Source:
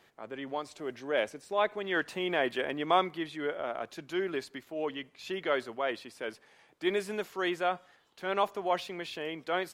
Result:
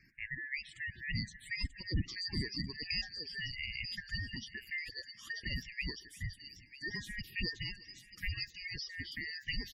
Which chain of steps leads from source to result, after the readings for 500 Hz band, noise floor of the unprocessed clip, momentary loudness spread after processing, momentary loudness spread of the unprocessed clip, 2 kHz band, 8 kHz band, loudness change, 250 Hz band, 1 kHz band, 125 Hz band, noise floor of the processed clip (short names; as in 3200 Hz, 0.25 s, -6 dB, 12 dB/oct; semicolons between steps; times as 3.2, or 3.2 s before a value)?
-26.0 dB, -64 dBFS, 7 LU, 10 LU, -3.0 dB, -2.0 dB, -6.5 dB, -9.5 dB, -34.5 dB, +7.5 dB, -59 dBFS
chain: four-band scrambler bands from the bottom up 2143; spectral gain 6–6.94, 1000–5700 Hz -8 dB; passive tone stack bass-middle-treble 6-0-2; in parallel at -2 dB: compressor 8:1, threshold -58 dBFS, peak gain reduction 20 dB; on the sum: envelope phaser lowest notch 570 Hz, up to 2300 Hz, full sweep at -44.5 dBFS; feedback echo 0.351 s, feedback 48%, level -23 dB; spectral gate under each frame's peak -15 dB strong; on a send: thin delay 0.938 s, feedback 33%, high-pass 4700 Hz, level -3 dB; on the sum: gain +16 dB